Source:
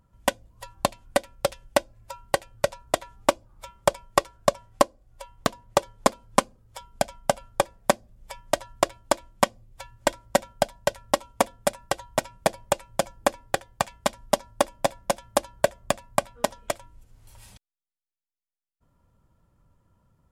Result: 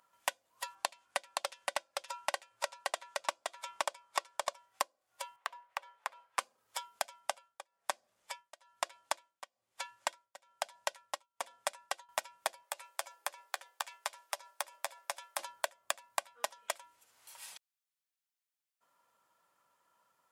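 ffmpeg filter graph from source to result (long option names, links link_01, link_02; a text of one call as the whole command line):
ffmpeg -i in.wav -filter_complex "[0:a]asettb=1/sr,asplit=3[link_01][link_02][link_03];[link_01]atrim=end=0.754[link_04];[link_02]atrim=start=0.75:end=4.53,asetpts=PTS-STARTPTS,afade=type=in:duration=0.004:curve=qsin,afade=type=out:start_time=3.776:duration=0.004:curve=qsin,lowpass=10000,aecho=1:1:520:0.668,atrim=end_sample=166698[link_05];[link_03]atrim=start=4.526[link_06];[link_04][link_05]acrossfade=duration=0.004:curve1=hsin:curve2=qsin[link_07];[link_07][link_06]acrossfade=duration=0.004:curve1=qsin:curve2=hsin,asettb=1/sr,asplit=3[link_08][link_09][link_10];[link_08]atrim=end=5.364[link_11];[link_09]atrim=start=5.36:end=6.39,asetpts=PTS-STARTPTS,afade=type=in:duration=0.004:curve=qsin,afade=type=out:start_time=1.026:duration=0.004:curve=qsin,acrossover=split=540 3000:gain=0.178 1 0.178[link_12][link_13][link_14];[link_12][link_13][link_14]amix=inputs=3:normalize=0,bandreject=frequency=1400:width=21,acompressor=threshold=-35dB:ratio=4:attack=3.2:release=140:knee=1:detection=peak[link_15];[link_10]atrim=start=6.386[link_16];[link_11][link_15]acrossfade=duration=0.004:curve1=hsin:curve2=qsin[link_17];[link_17][link_16]acrossfade=duration=0.004:curve1=qsin:curve2=hsin,asettb=1/sr,asplit=3[link_18][link_19][link_20];[link_18]atrim=end=7.204[link_21];[link_19]atrim=start=7.2:end=12.09,asetpts=PTS-STARTPTS,afade=type=in:duration=0.004:curve=qsin,afade=type=out:start_time=4.886:duration=0.004:curve=qsin,lowpass=11000,tremolo=f=1.1:d=0.98[link_22];[link_20]atrim=start=12.086[link_23];[link_21][link_22]acrossfade=duration=0.004:curve1=hsin:curve2=qsin[link_24];[link_24][link_23]acrossfade=duration=0.004:curve1=qsin:curve2=hsin,asettb=1/sr,asplit=3[link_25][link_26][link_27];[link_25]atrim=end=12.634[link_28];[link_26]atrim=start=12.63:end=15.39,asetpts=PTS-STARTPTS,afade=type=in:duration=0.004:curve=qsin,afade=type=out:start_time=2.756:duration=0.004:curve=qsin,highpass=frequency=380:width=0.5412,highpass=frequency=380:width=1.3066,acompressor=threshold=-38dB:ratio=2.5:attack=3.2:release=140:knee=1:detection=peak,asplit=2[link_29][link_30];[link_30]adelay=12,volume=-13dB[link_31];[link_29][link_31]amix=inputs=2:normalize=0,atrim=end_sample=121716[link_32];[link_27]atrim=start=15.386[link_33];[link_28][link_32]acrossfade=duration=0.004:curve1=hsin:curve2=qsin[link_34];[link_34][link_33]acrossfade=duration=0.004:curve1=qsin:curve2=hsin,acompressor=threshold=-33dB:ratio=4,highpass=930,volume=3.5dB" out.wav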